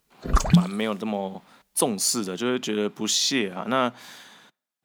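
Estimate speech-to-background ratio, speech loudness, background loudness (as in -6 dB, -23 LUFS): -3.0 dB, -25.5 LUFS, -22.5 LUFS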